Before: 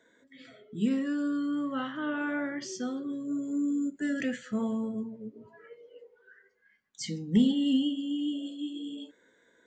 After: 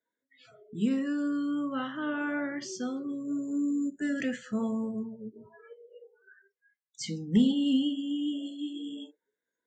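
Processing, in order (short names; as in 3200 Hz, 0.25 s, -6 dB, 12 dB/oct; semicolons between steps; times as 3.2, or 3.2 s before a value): spectral noise reduction 25 dB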